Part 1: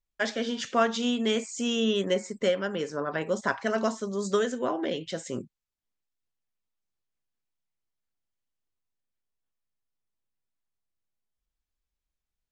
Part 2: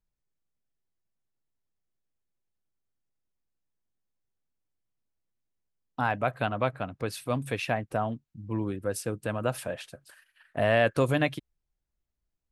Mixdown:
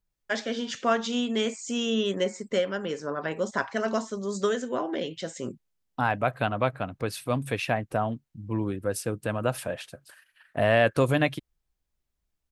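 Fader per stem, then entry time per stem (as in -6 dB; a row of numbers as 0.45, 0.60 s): -0.5, +2.0 dB; 0.10, 0.00 s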